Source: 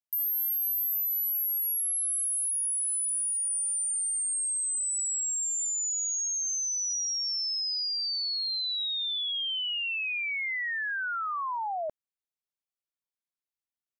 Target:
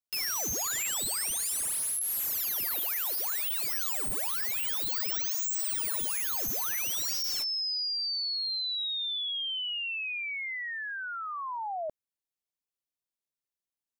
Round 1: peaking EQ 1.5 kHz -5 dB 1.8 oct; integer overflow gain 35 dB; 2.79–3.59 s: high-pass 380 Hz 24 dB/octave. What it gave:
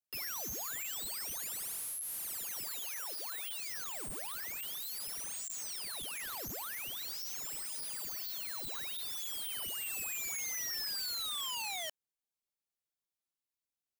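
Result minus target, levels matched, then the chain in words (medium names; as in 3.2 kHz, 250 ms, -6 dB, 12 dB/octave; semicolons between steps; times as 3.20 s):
integer overflow: distortion +10 dB
peaking EQ 1.5 kHz -5 dB 1.8 oct; integer overflow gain 28.5 dB; 2.79–3.59 s: high-pass 380 Hz 24 dB/octave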